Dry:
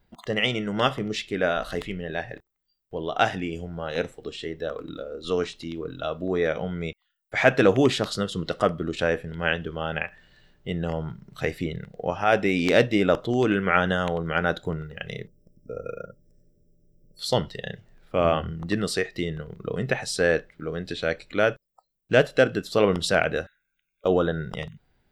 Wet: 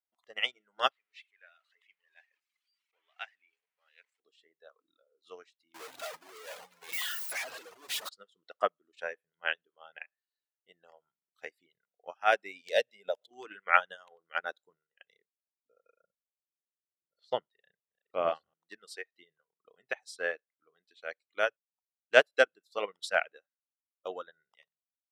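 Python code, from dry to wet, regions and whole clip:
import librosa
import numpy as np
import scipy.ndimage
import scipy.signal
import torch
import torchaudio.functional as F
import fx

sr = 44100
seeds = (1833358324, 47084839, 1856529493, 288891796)

y = fx.chain(x, sr, fx.zero_step(step_db=-31.0),
    fx.bandpass_q(hz=2300.0, q=2.1), at=(0.91, 4.2))
y = fx.chain(y, sr, fx.clip_1bit(),
    fx.echo_split(split_hz=1500.0, low_ms=181, high_ms=108, feedback_pct=52, wet_db=-11.5), at=(5.74, 8.09))
y = fx.chain(y, sr, fx.fixed_phaser(hz=310.0, stages=6),
    fx.pre_swell(db_per_s=81.0), at=(12.61, 13.31))
y = fx.chain(y, sr, fx.reverse_delay(ms=606, wet_db=-12.5),
    fx.lowpass(hz=5900.0, slope=12),
    fx.tilt_eq(slope=-2.5), at=(16.01, 18.54))
y = scipy.signal.sosfilt(scipy.signal.butter(2, 650.0, 'highpass', fs=sr, output='sos'), y)
y = fx.dereverb_blind(y, sr, rt60_s=1.8)
y = fx.upward_expand(y, sr, threshold_db=-39.0, expansion=2.5)
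y = y * 10.0 ** (3.0 / 20.0)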